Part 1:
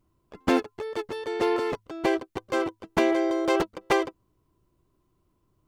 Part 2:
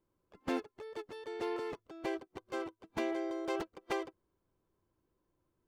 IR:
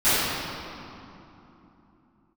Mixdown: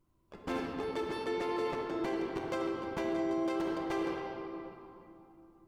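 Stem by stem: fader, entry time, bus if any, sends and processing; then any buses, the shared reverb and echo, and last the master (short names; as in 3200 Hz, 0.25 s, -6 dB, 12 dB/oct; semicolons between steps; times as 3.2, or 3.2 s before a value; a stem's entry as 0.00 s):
-7.0 dB, 0.00 s, send -17.5 dB, compressor 4:1, threshold -28 dBFS, peak gain reduction 10 dB
-6.0 dB, 0.00 s, no send, dry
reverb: on, RT60 3.1 s, pre-delay 3 ms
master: limiter -25.5 dBFS, peak gain reduction 7 dB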